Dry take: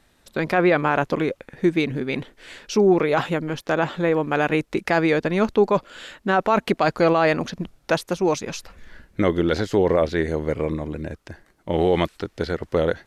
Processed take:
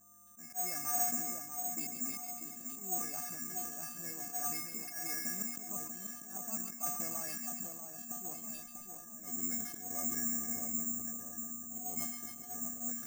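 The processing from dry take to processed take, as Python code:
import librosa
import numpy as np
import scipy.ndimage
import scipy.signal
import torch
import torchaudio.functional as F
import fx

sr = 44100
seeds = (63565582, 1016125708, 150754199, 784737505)

p1 = scipy.signal.sosfilt(scipy.signal.butter(4, 2400.0, 'lowpass', fs=sr, output='sos'), x)
p2 = fx.low_shelf(p1, sr, hz=140.0, db=7.0)
p3 = fx.dmg_buzz(p2, sr, base_hz=100.0, harmonics=15, level_db=-42.0, tilt_db=-5, odd_only=False)
p4 = fx.comb_fb(p3, sr, f0_hz=240.0, decay_s=0.29, harmonics='odd', damping=0.0, mix_pct=100)
p5 = fx.auto_swell(p4, sr, attack_ms=178.0)
p6 = p5 + fx.echo_split(p5, sr, split_hz=1200.0, low_ms=642, high_ms=139, feedback_pct=52, wet_db=-6.0, dry=0)
p7 = (np.kron(p6[::6], np.eye(6)[0]) * 6)[:len(p6)]
p8 = fx.sustainer(p7, sr, db_per_s=56.0)
y = F.gain(torch.from_numpy(p8), -6.5).numpy()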